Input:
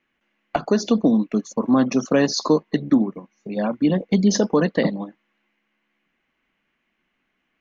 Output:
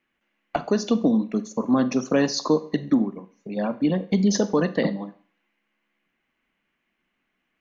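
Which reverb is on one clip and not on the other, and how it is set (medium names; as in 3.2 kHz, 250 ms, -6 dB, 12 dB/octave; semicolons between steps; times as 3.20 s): Schroeder reverb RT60 0.46 s, combs from 32 ms, DRR 14 dB; trim -3 dB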